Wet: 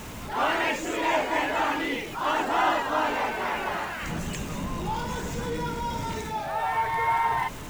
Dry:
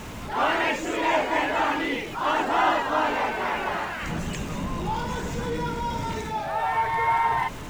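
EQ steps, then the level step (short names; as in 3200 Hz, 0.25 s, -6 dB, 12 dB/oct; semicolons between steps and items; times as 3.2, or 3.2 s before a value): high shelf 7800 Hz +7.5 dB; -2.0 dB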